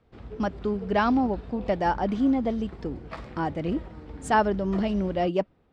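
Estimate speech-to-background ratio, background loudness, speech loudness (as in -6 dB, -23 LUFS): 15.5 dB, -42.0 LUFS, -26.5 LUFS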